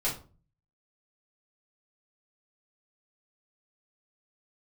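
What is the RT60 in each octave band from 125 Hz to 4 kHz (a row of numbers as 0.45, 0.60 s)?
0.70, 0.55, 0.40, 0.35, 0.25, 0.25 s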